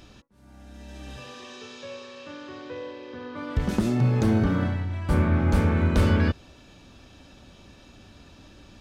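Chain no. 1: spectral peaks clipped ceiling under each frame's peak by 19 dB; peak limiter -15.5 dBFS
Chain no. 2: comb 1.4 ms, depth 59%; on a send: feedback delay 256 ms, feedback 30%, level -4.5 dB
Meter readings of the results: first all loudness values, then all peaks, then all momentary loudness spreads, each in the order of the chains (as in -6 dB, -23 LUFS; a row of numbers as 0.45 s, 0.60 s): -27.0 LUFS, -20.5 LUFS; -15.5 dBFS, -6.5 dBFS; 16 LU, 22 LU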